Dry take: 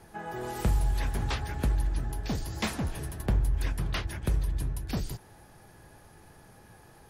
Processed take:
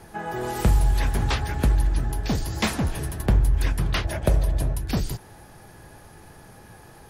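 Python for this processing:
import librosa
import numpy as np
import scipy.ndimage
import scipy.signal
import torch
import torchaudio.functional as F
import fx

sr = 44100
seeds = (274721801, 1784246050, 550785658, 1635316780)

y = fx.peak_eq(x, sr, hz=620.0, db=14.5, octaves=0.56, at=(4.04, 4.75))
y = y * librosa.db_to_amplitude(7.0)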